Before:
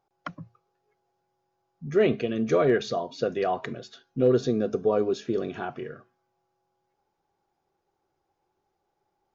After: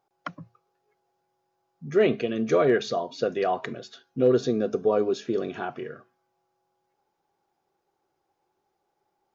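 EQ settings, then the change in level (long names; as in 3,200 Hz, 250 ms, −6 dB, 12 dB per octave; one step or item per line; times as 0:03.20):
low-shelf EQ 97 Hz −11.5 dB
+1.5 dB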